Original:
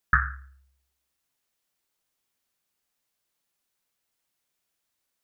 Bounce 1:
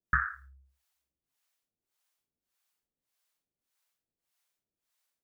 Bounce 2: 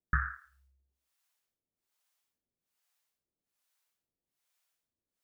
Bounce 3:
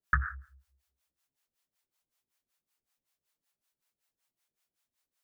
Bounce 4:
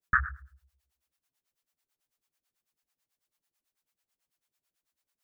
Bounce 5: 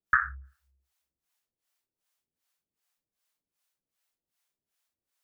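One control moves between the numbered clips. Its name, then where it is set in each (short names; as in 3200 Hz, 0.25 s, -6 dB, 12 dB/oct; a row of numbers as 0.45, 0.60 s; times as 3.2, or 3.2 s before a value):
harmonic tremolo, rate: 1.7, 1.2, 5.3, 9.1, 2.6 Hz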